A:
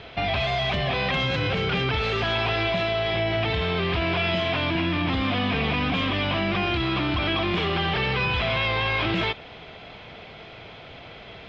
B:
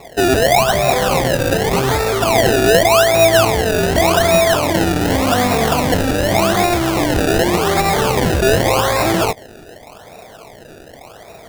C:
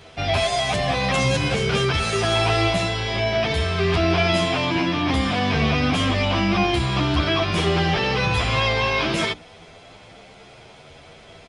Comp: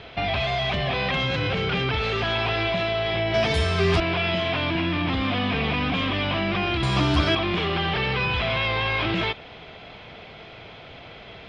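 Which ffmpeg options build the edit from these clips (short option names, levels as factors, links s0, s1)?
-filter_complex "[2:a]asplit=2[s0][s1];[0:a]asplit=3[s2][s3][s4];[s2]atrim=end=3.342[s5];[s0]atrim=start=3.338:end=4.002[s6];[s3]atrim=start=3.998:end=6.832[s7];[s1]atrim=start=6.828:end=7.352[s8];[s4]atrim=start=7.348[s9];[s5][s6]acrossfade=d=0.004:c1=hsin:c2=hsin[s10];[s10][s7]acrossfade=d=0.004:c1=hsin:c2=hsin[s11];[s11][s8]acrossfade=d=0.004:c1=hsin:c2=hsin[s12];[s12][s9]acrossfade=d=0.004:c1=hsin:c2=hsin"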